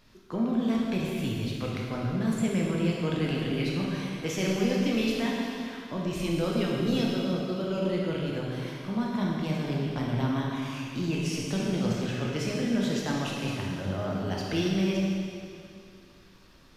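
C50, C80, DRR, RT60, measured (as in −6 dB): −1.0 dB, 0.5 dB, −3.5 dB, 2.6 s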